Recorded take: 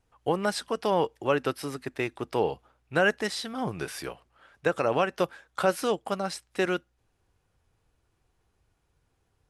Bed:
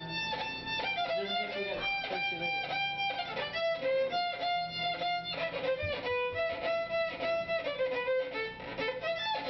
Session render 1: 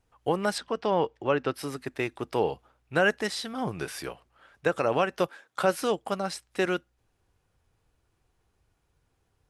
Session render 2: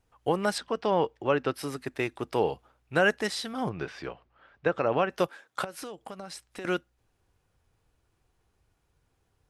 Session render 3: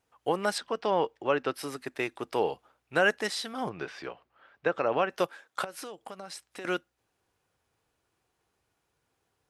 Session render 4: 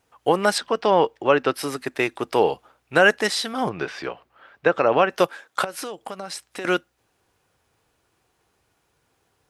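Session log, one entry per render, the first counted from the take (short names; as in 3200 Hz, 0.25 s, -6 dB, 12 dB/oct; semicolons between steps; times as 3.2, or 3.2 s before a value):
0.58–1.54 air absorption 120 m; 5.27–5.74 HPF 280 Hz -> 68 Hz 24 dB/oct
3.69–5.1 air absorption 190 m; 5.64–6.65 compressor 8:1, threshold -36 dBFS
HPF 310 Hz 6 dB/oct
gain +9 dB; limiter -3 dBFS, peak gain reduction 1 dB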